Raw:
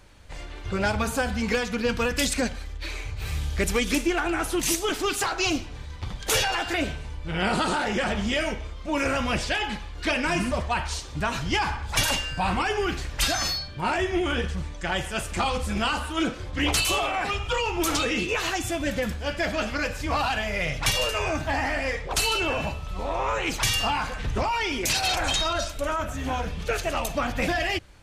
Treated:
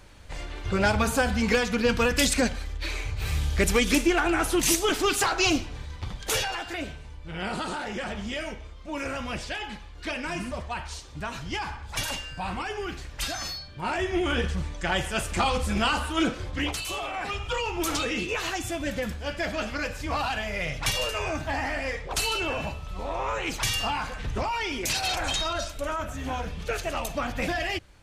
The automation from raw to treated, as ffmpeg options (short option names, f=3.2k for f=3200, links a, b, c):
-af "volume=17.5dB,afade=t=out:st=5.52:d=1.14:silence=0.354813,afade=t=in:st=13.63:d=0.84:silence=0.398107,afade=t=out:st=16.46:d=0.31:silence=0.266073,afade=t=in:st=16.77:d=0.67:silence=0.421697"